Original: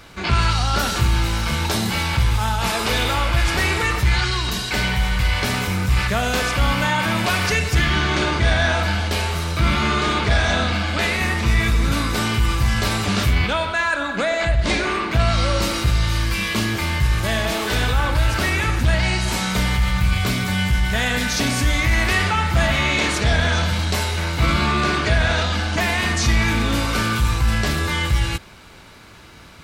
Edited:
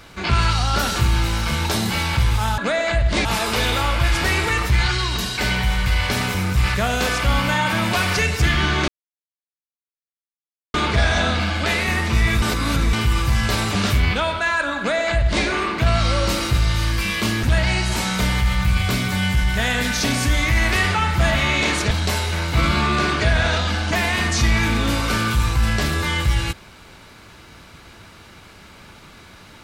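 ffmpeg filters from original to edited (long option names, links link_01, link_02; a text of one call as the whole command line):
ffmpeg -i in.wav -filter_complex "[0:a]asplit=9[link_01][link_02][link_03][link_04][link_05][link_06][link_07][link_08][link_09];[link_01]atrim=end=2.582[link_10];[link_02]atrim=start=14.108:end=14.782[link_11];[link_03]atrim=start=2.578:end=8.21,asetpts=PTS-STARTPTS,afade=type=out:start_time=5.628:duration=0.004:curve=hsin[link_12];[link_04]atrim=start=8.21:end=10.07,asetpts=PTS-STARTPTS,volume=0[link_13];[link_05]atrim=start=10.07:end=11.752,asetpts=PTS-STARTPTS,afade=type=in:duration=0.004:curve=hsin[link_14];[link_06]atrim=start=11.748:end=12.262,asetpts=PTS-STARTPTS,areverse[link_15];[link_07]atrim=start=12.258:end=16.762[link_16];[link_08]atrim=start=18.788:end=23.272[link_17];[link_09]atrim=start=23.758[link_18];[link_10][link_11]acrossfade=duration=0.004:curve1=hsin:curve2=hsin[link_19];[link_12][link_13][link_14]concat=n=3:v=0:a=1[link_20];[link_19][link_20]acrossfade=duration=0.004:curve1=hsin:curve2=hsin[link_21];[link_21][link_15]acrossfade=duration=0.004:curve1=hsin:curve2=hsin[link_22];[link_22][link_16]acrossfade=duration=0.004:curve1=hsin:curve2=hsin[link_23];[link_23][link_17]acrossfade=duration=0.004:curve1=hsin:curve2=hsin[link_24];[link_24][link_18]acrossfade=duration=0.004:curve1=hsin:curve2=hsin" out.wav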